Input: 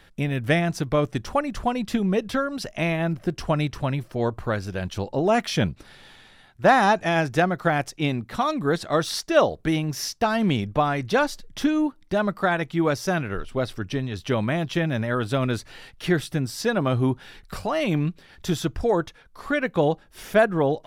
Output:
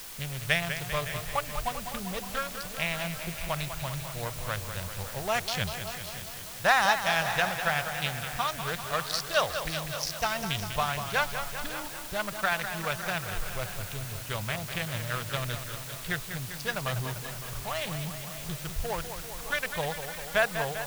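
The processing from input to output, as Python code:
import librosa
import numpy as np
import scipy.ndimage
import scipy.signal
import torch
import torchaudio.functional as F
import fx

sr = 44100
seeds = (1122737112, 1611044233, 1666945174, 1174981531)

y = fx.wiener(x, sr, points=25)
y = fx.tone_stack(y, sr, knobs='10-0-10')
y = fx.quant_dither(y, sr, seeds[0], bits=8, dither='triangular')
y = y + 10.0 ** (-14.5 / 20.0) * np.pad(y, (int(560 * sr / 1000.0), 0))[:len(y)]
y = fx.echo_warbled(y, sr, ms=197, feedback_pct=68, rate_hz=2.8, cents=92, wet_db=-9)
y = y * librosa.db_to_amplitude(5.0)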